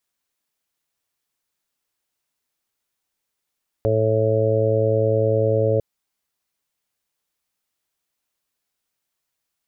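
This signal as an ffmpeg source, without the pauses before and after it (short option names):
-f lavfi -i "aevalsrc='0.0891*sin(2*PI*110*t)+0.0224*sin(2*PI*220*t)+0.0335*sin(2*PI*330*t)+0.0891*sin(2*PI*440*t)+0.1*sin(2*PI*550*t)+0.0299*sin(2*PI*660*t)':d=1.95:s=44100"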